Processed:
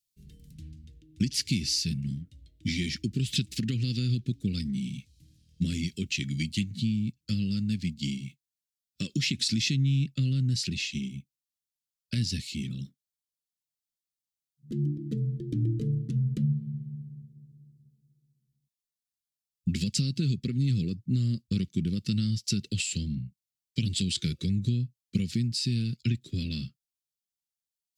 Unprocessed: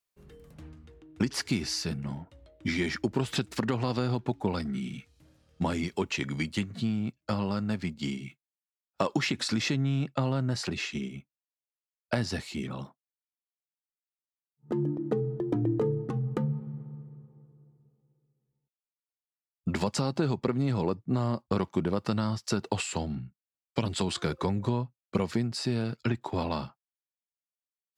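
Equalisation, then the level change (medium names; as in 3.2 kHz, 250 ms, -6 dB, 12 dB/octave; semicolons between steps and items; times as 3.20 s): Chebyshev band-stop 180–4000 Hz, order 2; dynamic bell 2.5 kHz, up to +5 dB, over -55 dBFS, Q 1.5; +4.0 dB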